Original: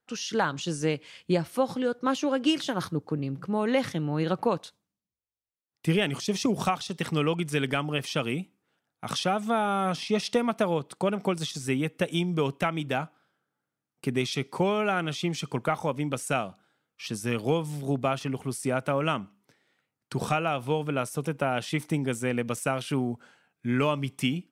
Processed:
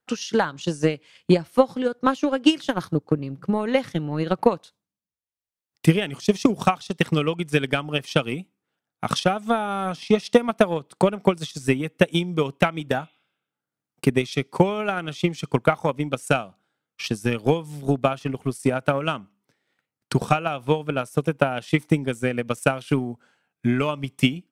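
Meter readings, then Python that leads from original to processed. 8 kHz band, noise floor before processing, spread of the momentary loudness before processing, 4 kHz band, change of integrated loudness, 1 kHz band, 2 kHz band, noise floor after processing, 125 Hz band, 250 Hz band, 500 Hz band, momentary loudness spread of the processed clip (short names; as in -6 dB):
0.0 dB, under -85 dBFS, 6 LU, +3.0 dB, +5.0 dB, +4.0 dB, +4.5 dB, under -85 dBFS, +5.0 dB, +5.5 dB, +5.5 dB, 7 LU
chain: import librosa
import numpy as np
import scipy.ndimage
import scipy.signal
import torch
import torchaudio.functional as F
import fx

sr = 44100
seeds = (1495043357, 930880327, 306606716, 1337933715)

y = fx.spec_repair(x, sr, seeds[0], start_s=12.94, length_s=0.68, low_hz=2000.0, high_hz=4100.0, source='both')
y = fx.transient(y, sr, attack_db=11, sustain_db=-5)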